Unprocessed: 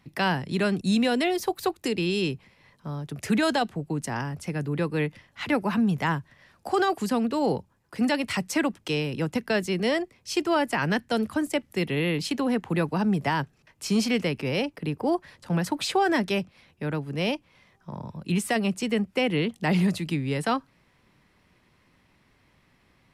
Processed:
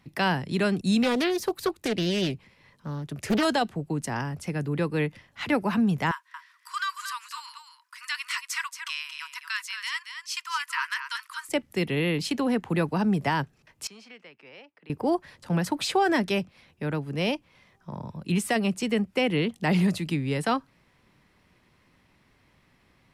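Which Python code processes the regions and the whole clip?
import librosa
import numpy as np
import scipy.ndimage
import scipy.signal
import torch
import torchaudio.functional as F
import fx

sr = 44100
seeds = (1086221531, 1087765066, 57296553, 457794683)

y = fx.chain(x, sr, fx.peak_eq(hz=720.0, db=-4.0, octaves=0.33),
    fx.doppler_dist(depth_ms=0.69), at=(1.03, 3.45))
y = fx.chain(y, sr, fx.cheby1_highpass(hz=950.0, order=10),
    fx.echo_single(ms=228, db=-8.0), at=(6.11, 11.49))
y = fx.chain(y, sr, fx.lowpass(hz=1600.0, slope=12),
    fx.differentiator(),
    fx.band_squash(depth_pct=70), at=(13.87, 14.9))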